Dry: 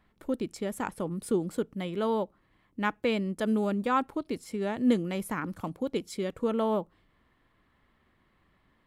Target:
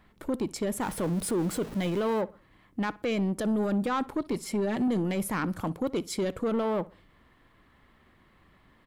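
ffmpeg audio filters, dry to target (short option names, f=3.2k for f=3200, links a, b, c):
-filter_complex "[0:a]asettb=1/sr,asplit=3[a][b][c];[a]atrim=end=0.814[d];[b]atrim=start=0.81:end=2.21,asetpts=PTS-STARTPTS,afade=t=in:d=0.004:c=qsin,afade=t=out:st=1.396:d=0.004:c=qsin,aeval=exprs='val(0)+0.5*0.00596*sgn(val(0))':c=same[e];[c]atrim=start=2.206[f];[d][e]acrossfade=d=0.004:c1=hsin:c2=qsin[g];[g][f]acrossfade=d=0.004:c1=qsin:c2=hsin,asettb=1/sr,asplit=3[h][i][j];[h]atrim=end=4.324[k];[i]atrim=start=4.32:end=4.88,asetpts=PTS-STARTPTS,afade=t=in:d=0.004:c=qsin,afade=t=out:st=0.556:d=0.004:c=qsin,aecho=1:1:5.2:0.6,atrim=end_sample=24696[l];[j]atrim=start=4.876[m];[k][l]acrossfade=d=0.004:c1=hsin:c2=qsin[n];[n][m]acrossfade=d=0.004:c1=qsin:c2=hsin,alimiter=limit=-24dB:level=0:latency=1:release=14,asoftclip=type=tanh:threshold=-29dB,asplit=2[o][p];[p]adelay=61,lowpass=f=3.3k:p=1,volume=-20.5dB,asplit=2[q][r];[r]adelay=61,lowpass=f=3.3k:p=1,volume=0.34,asplit=2[s][t];[t]adelay=61,lowpass=f=3.3k:p=1,volume=0.34[u];[o][q][s][u]amix=inputs=4:normalize=0,volume=7dB"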